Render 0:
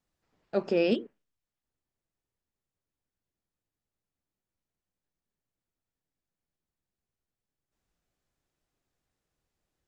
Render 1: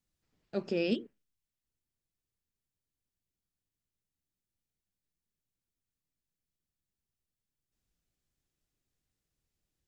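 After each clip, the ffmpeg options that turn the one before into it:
ffmpeg -i in.wav -af "equalizer=frequency=850:width=0.49:gain=-10" out.wav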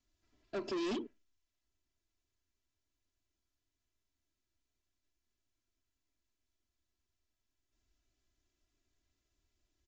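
ffmpeg -i in.wav -af "aecho=1:1:3:0.97,aresample=16000,asoftclip=type=tanh:threshold=-35dB,aresample=44100,volume=1dB" out.wav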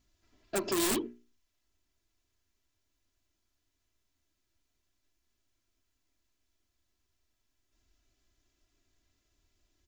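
ffmpeg -i in.wav -af "aeval=exprs='(mod(50.1*val(0)+1,2)-1)/50.1':channel_layout=same,aeval=exprs='val(0)+0.0001*(sin(2*PI*60*n/s)+sin(2*PI*2*60*n/s)/2+sin(2*PI*3*60*n/s)/3+sin(2*PI*4*60*n/s)/4+sin(2*PI*5*60*n/s)/5)':channel_layout=same,bandreject=frequency=60:width_type=h:width=6,bandreject=frequency=120:width_type=h:width=6,bandreject=frequency=180:width_type=h:width=6,bandreject=frequency=240:width_type=h:width=6,bandreject=frequency=300:width_type=h:width=6,bandreject=frequency=360:width_type=h:width=6,bandreject=frequency=420:width_type=h:width=6,volume=7dB" out.wav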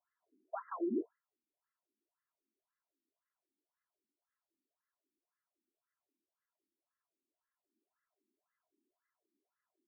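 ffmpeg -i in.wav -af "afftfilt=real='re*between(b*sr/1024,270*pow(1500/270,0.5+0.5*sin(2*PI*1.9*pts/sr))/1.41,270*pow(1500/270,0.5+0.5*sin(2*PI*1.9*pts/sr))*1.41)':imag='im*between(b*sr/1024,270*pow(1500/270,0.5+0.5*sin(2*PI*1.9*pts/sr))/1.41,270*pow(1500/270,0.5+0.5*sin(2*PI*1.9*pts/sr))*1.41)':win_size=1024:overlap=0.75,volume=-1dB" out.wav

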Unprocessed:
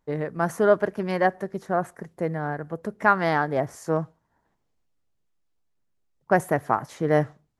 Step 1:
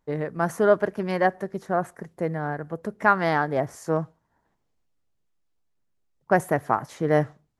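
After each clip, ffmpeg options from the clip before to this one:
ffmpeg -i in.wav -af anull out.wav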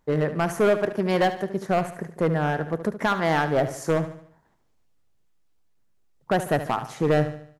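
ffmpeg -i in.wav -filter_complex "[0:a]alimiter=limit=-13.5dB:level=0:latency=1:release=467,asoftclip=type=hard:threshold=-21.5dB,asplit=2[link_01][link_02];[link_02]aecho=0:1:73|146|219|292|365:0.251|0.113|0.0509|0.0229|0.0103[link_03];[link_01][link_03]amix=inputs=2:normalize=0,volume=5.5dB" out.wav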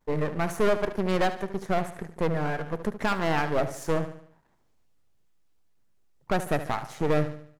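ffmpeg -i in.wav -af "aeval=exprs='if(lt(val(0),0),0.251*val(0),val(0))':channel_layout=same" out.wav

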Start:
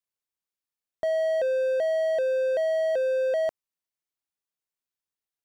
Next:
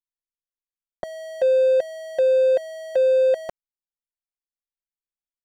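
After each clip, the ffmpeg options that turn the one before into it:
ffmpeg -i in.wav -af "anlmdn=0.251,aecho=1:1:5.5:0.83,volume=3.5dB" out.wav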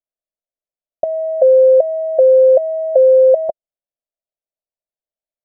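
ffmpeg -i in.wav -af "lowpass=frequency=630:width_type=q:width=6.8,volume=-1dB" out.wav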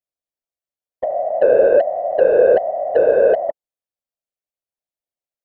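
ffmpeg -i in.wav -af "acontrast=38,afftfilt=real='hypot(re,im)*cos(2*PI*random(0))':imag='hypot(re,im)*sin(2*PI*random(1))':win_size=512:overlap=0.75,volume=-1dB" out.wav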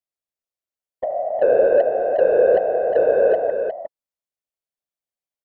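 ffmpeg -i in.wav -af "aecho=1:1:359:0.447,volume=-3dB" out.wav

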